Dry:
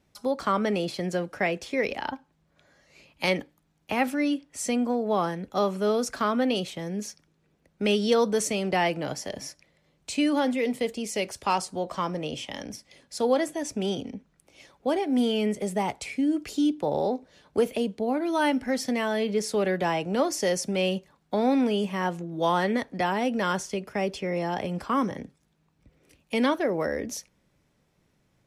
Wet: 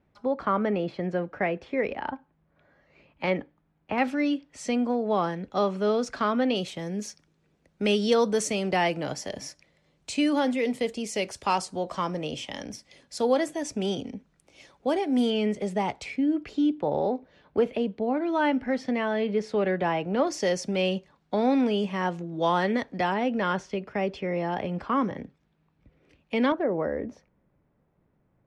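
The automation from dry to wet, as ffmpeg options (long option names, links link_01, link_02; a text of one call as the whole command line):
ffmpeg -i in.wav -af "asetnsamples=nb_out_samples=441:pad=0,asendcmd='3.98 lowpass f 4800;6.6 lowpass f 9100;15.3 lowpass f 5200;16.16 lowpass f 2800;20.27 lowpass f 5500;23.14 lowpass f 3200;26.52 lowpass f 1300',lowpass=2000" out.wav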